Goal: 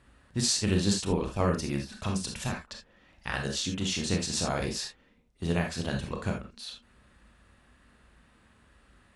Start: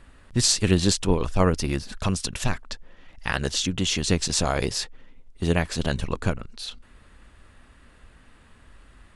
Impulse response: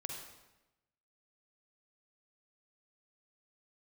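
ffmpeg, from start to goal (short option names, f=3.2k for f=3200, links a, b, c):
-filter_complex "[0:a]highpass=50[a];[1:a]atrim=start_sample=2205,atrim=end_sample=6174,asetrate=70560,aresample=44100[b];[a][b]afir=irnorm=-1:irlink=0"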